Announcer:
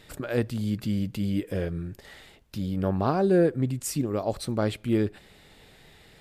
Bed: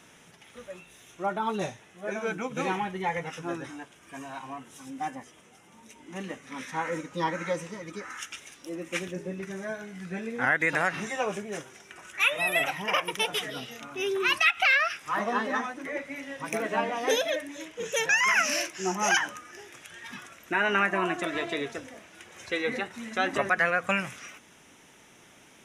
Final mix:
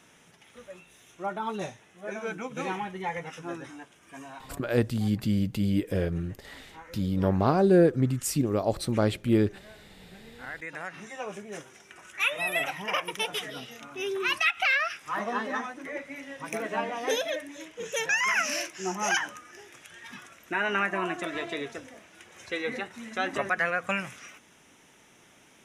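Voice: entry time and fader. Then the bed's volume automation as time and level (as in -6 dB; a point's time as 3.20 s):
4.40 s, +1.5 dB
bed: 4.29 s -3 dB
4.74 s -16.5 dB
10.38 s -16.5 dB
11.67 s -2.5 dB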